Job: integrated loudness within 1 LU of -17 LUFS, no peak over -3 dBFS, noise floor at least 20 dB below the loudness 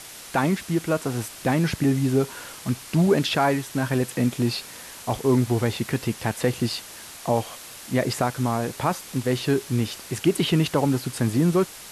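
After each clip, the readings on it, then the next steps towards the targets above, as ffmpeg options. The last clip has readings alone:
noise floor -42 dBFS; noise floor target -45 dBFS; loudness -24.5 LUFS; peak -8.5 dBFS; loudness target -17.0 LUFS
-> -af "afftdn=nr=6:nf=-42"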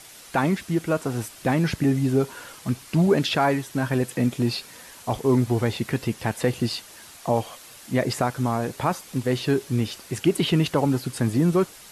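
noise floor -46 dBFS; loudness -24.5 LUFS; peak -8.5 dBFS; loudness target -17.0 LUFS
-> -af "volume=7.5dB,alimiter=limit=-3dB:level=0:latency=1"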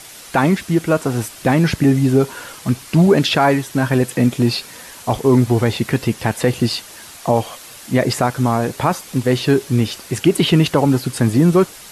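loudness -17.0 LUFS; peak -3.0 dBFS; noise floor -38 dBFS

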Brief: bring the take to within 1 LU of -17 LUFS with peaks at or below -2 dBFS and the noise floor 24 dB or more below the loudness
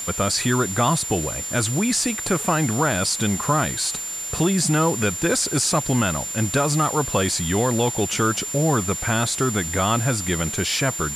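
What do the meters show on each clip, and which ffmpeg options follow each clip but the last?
steady tone 7200 Hz; tone level -28 dBFS; noise floor -30 dBFS; noise floor target -45 dBFS; loudness -21.0 LUFS; peak -7.5 dBFS; loudness target -17.0 LUFS
-> -af "bandreject=f=7.2k:w=30"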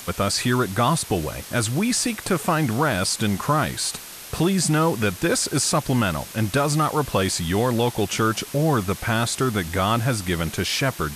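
steady tone none; noise floor -39 dBFS; noise floor target -46 dBFS
-> -af "afftdn=nr=7:nf=-39"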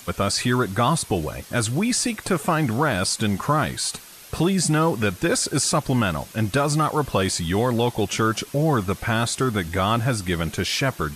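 noise floor -44 dBFS; noise floor target -47 dBFS
-> -af "afftdn=nr=6:nf=-44"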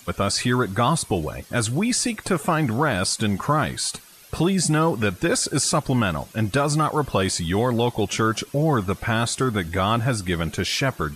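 noise floor -48 dBFS; loudness -22.5 LUFS; peak -8.5 dBFS; loudness target -17.0 LUFS
-> -af "volume=5.5dB"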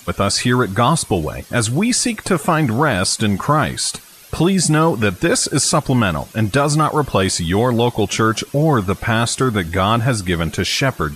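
loudness -17.0 LUFS; peak -3.0 dBFS; noise floor -42 dBFS

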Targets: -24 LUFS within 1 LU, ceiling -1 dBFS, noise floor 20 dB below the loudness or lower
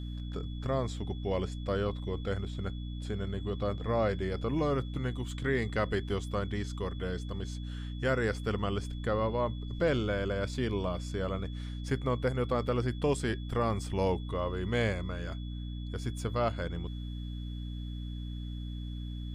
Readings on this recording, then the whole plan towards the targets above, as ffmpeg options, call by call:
hum 60 Hz; harmonics up to 300 Hz; hum level -36 dBFS; steady tone 3400 Hz; tone level -53 dBFS; loudness -33.5 LUFS; peak -16.5 dBFS; loudness target -24.0 LUFS
-> -af "bandreject=f=60:t=h:w=4,bandreject=f=120:t=h:w=4,bandreject=f=180:t=h:w=4,bandreject=f=240:t=h:w=4,bandreject=f=300:t=h:w=4"
-af "bandreject=f=3.4k:w=30"
-af "volume=9.5dB"

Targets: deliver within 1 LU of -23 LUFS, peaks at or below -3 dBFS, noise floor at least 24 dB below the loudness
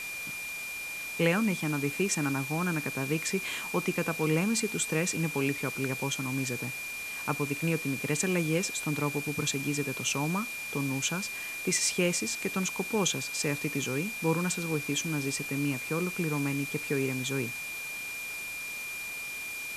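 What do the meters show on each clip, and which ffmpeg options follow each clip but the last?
steady tone 2400 Hz; tone level -36 dBFS; noise floor -38 dBFS; noise floor target -55 dBFS; loudness -30.5 LUFS; peak -12.0 dBFS; loudness target -23.0 LUFS
-> -af "bandreject=f=2.4k:w=30"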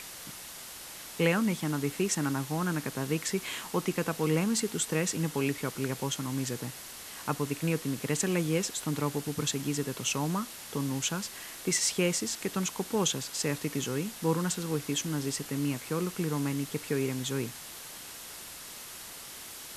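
steady tone none; noise floor -45 dBFS; noise floor target -56 dBFS
-> -af "afftdn=nr=11:nf=-45"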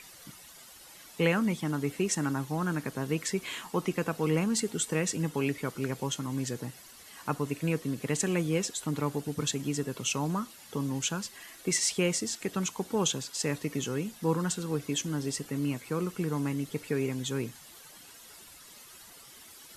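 noise floor -52 dBFS; noise floor target -56 dBFS
-> -af "afftdn=nr=6:nf=-52"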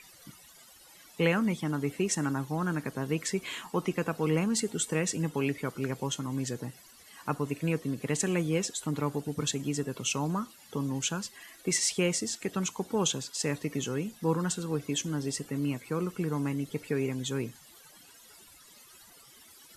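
noise floor -55 dBFS; noise floor target -56 dBFS
-> -af "afftdn=nr=6:nf=-55"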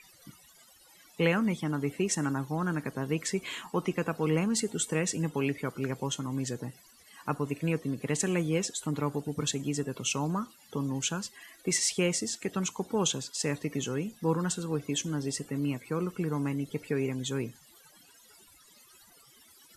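noise floor -59 dBFS; loudness -31.5 LUFS; peak -12.5 dBFS; loudness target -23.0 LUFS
-> -af "volume=8.5dB"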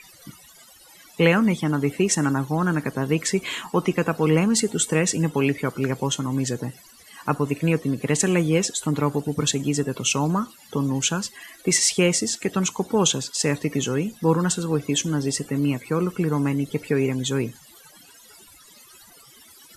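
loudness -23.0 LUFS; peak -4.0 dBFS; noise floor -50 dBFS

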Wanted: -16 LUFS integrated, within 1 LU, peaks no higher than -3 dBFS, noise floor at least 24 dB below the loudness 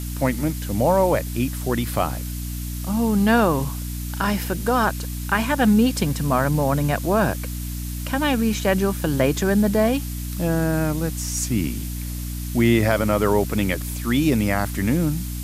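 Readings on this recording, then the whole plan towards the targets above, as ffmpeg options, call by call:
hum 60 Hz; harmonics up to 300 Hz; hum level -27 dBFS; noise floor -29 dBFS; noise floor target -46 dBFS; loudness -22.0 LUFS; peak -5.0 dBFS; loudness target -16.0 LUFS
-> -af "bandreject=f=60:t=h:w=4,bandreject=f=120:t=h:w=4,bandreject=f=180:t=h:w=4,bandreject=f=240:t=h:w=4,bandreject=f=300:t=h:w=4"
-af "afftdn=nr=17:nf=-29"
-af "volume=6dB,alimiter=limit=-3dB:level=0:latency=1"

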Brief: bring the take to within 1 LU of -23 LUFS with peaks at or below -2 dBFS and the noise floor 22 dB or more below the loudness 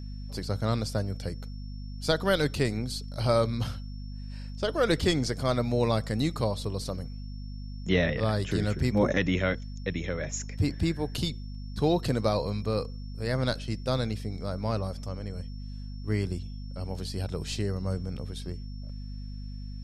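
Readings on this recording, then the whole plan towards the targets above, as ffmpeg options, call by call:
hum 50 Hz; harmonics up to 250 Hz; hum level -36 dBFS; steady tone 5400 Hz; tone level -55 dBFS; loudness -30.0 LUFS; peak -11.0 dBFS; loudness target -23.0 LUFS
-> -af "bandreject=f=50:t=h:w=6,bandreject=f=100:t=h:w=6,bandreject=f=150:t=h:w=6,bandreject=f=200:t=h:w=6,bandreject=f=250:t=h:w=6"
-af "bandreject=f=5.4k:w=30"
-af "volume=7dB"

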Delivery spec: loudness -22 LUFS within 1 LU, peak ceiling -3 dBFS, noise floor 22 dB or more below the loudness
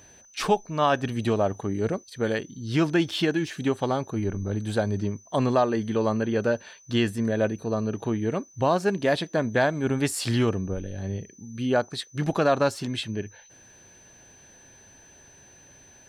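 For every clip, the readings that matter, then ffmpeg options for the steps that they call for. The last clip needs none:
steady tone 6100 Hz; tone level -52 dBFS; loudness -26.5 LUFS; peak -9.0 dBFS; loudness target -22.0 LUFS
-> -af "bandreject=f=6.1k:w=30"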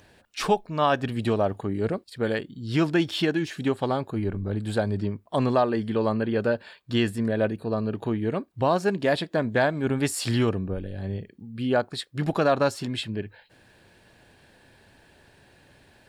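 steady tone none; loudness -26.5 LUFS; peak -9.0 dBFS; loudness target -22.0 LUFS
-> -af "volume=4.5dB"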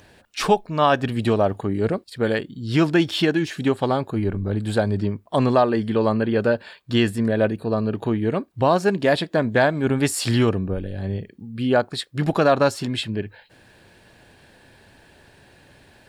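loudness -22.0 LUFS; peak -4.5 dBFS; noise floor -53 dBFS

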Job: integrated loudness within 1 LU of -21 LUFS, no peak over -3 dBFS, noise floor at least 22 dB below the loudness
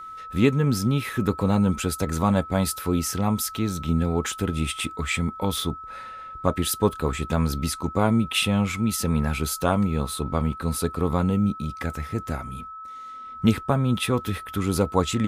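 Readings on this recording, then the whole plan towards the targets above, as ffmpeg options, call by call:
steady tone 1300 Hz; tone level -36 dBFS; loudness -24.5 LUFS; peak -5.0 dBFS; loudness target -21.0 LUFS
-> -af "bandreject=f=1.3k:w=30"
-af "volume=3.5dB,alimiter=limit=-3dB:level=0:latency=1"

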